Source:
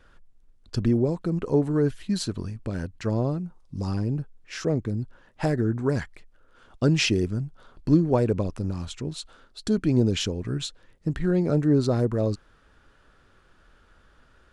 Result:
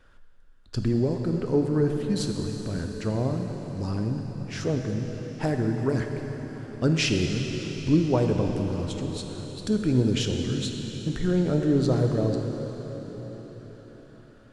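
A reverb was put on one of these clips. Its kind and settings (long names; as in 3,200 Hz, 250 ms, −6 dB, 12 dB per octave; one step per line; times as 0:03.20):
dense smooth reverb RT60 5 s, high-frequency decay 1×, DRR 3 dB
level −2 dB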